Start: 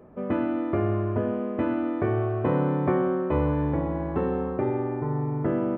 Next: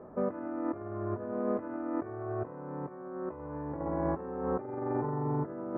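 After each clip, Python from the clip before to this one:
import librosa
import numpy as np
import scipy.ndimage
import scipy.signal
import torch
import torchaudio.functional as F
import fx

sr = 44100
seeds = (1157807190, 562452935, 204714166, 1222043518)

y = scipy.signal.sosfilt(scipy.signal.butter(4, 1600.0, 'lowpass', fs=sr, output='sos'), x)
y = fx.low_shelf(y, sr, hz=280.0, db=-9.0)
y = fx.over_compress(y, sr, threshold_db=-34.0, ratio=-0.5)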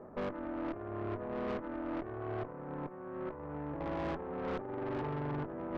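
y = fx.tube_stage(x, sr, drive_db=36.0, bias=0.75)
y = F.gain(torch.from_numpy(y), 2.5).numpy()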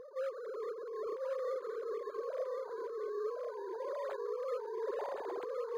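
y = fx.sine_speech(x, sr)
y = y + 10.0 ** (-3.5 / 20.0) * np.pad(y, (int(1065 * sr / 1000.0), 0))[:len(y)]
y = np.interp(np.arange(len(y)), np.arange(len(y))[::8], y[::8])
y = F.gain(torch.from_numpy(y), -1.5).numpy()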